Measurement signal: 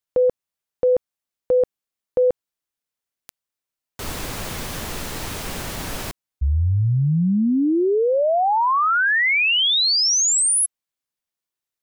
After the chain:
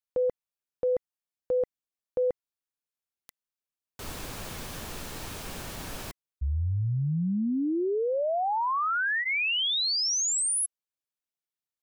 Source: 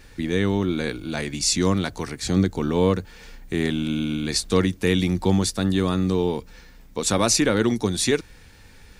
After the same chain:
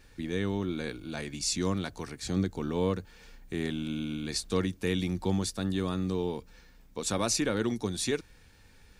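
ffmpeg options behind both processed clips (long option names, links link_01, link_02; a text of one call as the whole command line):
ffmpeg -i in.wav -af "bandreject=frequency=2000:width=23,volume=-9dB" out.wav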